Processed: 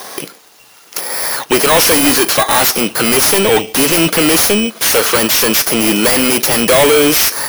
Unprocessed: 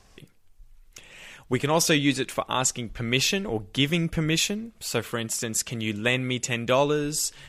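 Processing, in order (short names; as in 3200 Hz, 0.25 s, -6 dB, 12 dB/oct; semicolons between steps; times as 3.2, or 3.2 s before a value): FFT order left unsorted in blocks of 16 samples; HPF 250 Hz 12 dB/oct; overdrive pedal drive 36 dB, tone 6100 Hz, clips at -6 dBFS; gain +5.5 dB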